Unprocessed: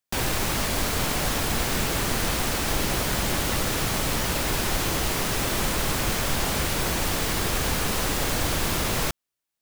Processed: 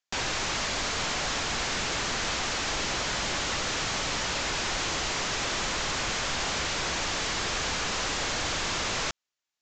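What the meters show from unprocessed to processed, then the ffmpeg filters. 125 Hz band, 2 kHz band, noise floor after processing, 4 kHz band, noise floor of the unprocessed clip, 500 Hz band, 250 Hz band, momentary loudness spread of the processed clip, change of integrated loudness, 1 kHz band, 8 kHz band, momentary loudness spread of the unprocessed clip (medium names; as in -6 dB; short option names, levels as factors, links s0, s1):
-10.5 dB, -1.0 dB, under -85 dBFS, -0.5 dB, -85 dBFS, -5.5 dB, -9.0 dB, 0 LU, -3.5 dB, -2.5 dB, -3.5 dB, 0 LU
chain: -af "lowshelf=f=500:g=-11,aresample=16000,asoftclip=type=tanh:threshold=0.0531,aresample=44100,volume=1.26"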